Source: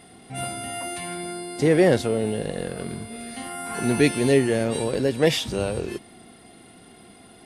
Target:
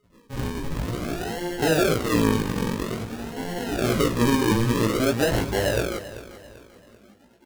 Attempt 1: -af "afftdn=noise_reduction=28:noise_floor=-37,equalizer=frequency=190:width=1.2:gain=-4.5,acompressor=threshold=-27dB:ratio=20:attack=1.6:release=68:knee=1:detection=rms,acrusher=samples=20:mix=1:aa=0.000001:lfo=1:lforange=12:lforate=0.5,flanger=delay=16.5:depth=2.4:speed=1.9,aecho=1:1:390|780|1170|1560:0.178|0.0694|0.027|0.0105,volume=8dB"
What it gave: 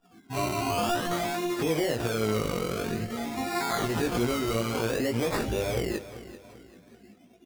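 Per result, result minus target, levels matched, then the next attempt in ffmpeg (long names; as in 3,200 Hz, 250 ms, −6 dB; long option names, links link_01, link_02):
sample-and-hold swept by an LFO: distortion −12 dB; downward compressor: peak gain reduction +7 dB
-af "afftdn=noise_reduction=28:noise_floor=-37,equalizer=frequency=190:width=1.2:gain=-4.5,acompressor=threshold=-27dB:ratio=20:attack=1.6:release=68:knee=1:detection=rms,acrusher=samples=51:mix=1:aa=0.000001:lfo=1:lforange=30.6:lforate=0.5,flanger=delay=16.5:depth=2.4:speed=1.9,aecho=1:1:390|780|1170|1560:0.178|0.0694|0.027|0.0105,volume=8dB"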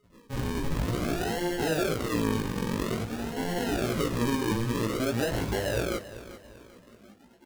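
downward compressor: peak gain reduction +7 dB
-af "afftdn=noise_reduction=28:noise_floor=-37,equalizer=frequency=190:width=1.2:gain=-4.5,acompressor=threshold=-19.5dB:ratio=20:attack=1.6:release=68:knee=1:detection=rms,acrusher=samples=51:mix=1:aa=0.000001:lfo=1:lforange=30.6:lforate=0.5,flanger=delay=16.5:depth=2.4:speed=1.9,aecho=1:1:390|780|1170|1560:0.178|0.0694|0.027|0.0105,volume=8dB"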